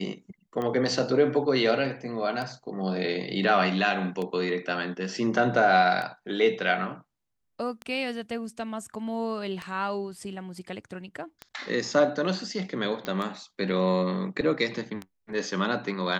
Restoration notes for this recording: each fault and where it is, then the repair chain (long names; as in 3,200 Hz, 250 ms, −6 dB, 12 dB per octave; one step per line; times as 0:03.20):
scratch tick 33 1/3 rpm −20 dBFS
0:13.05: click −18 dBFS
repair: click removal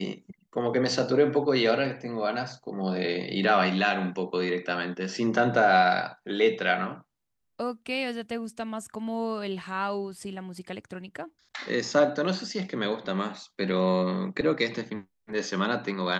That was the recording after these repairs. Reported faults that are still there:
none of them is left